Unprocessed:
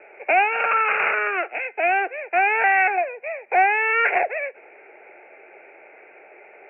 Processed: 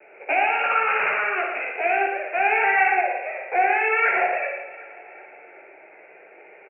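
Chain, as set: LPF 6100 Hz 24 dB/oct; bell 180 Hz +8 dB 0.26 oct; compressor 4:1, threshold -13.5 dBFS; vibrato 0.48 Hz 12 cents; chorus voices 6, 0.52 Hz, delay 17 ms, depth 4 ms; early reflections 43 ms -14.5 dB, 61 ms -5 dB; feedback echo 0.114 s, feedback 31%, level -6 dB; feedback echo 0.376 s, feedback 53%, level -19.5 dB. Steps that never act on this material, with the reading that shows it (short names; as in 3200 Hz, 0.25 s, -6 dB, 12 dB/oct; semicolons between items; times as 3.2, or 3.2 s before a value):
LPF 6100 Hz: input band ends at 2900 Hz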